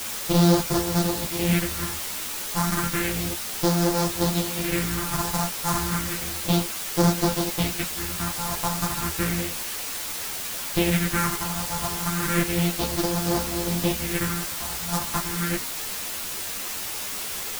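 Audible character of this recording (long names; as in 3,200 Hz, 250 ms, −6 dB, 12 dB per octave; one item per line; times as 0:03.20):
a buzz of ramps at a fixed pitch in blocks of 256 samples
phaser sweep stages 4, 0.32 Hz, lowest notch 390–2,600 Hz
a quantiser's noise floor 6 bits, dither triangular
a shimmering, thickened sound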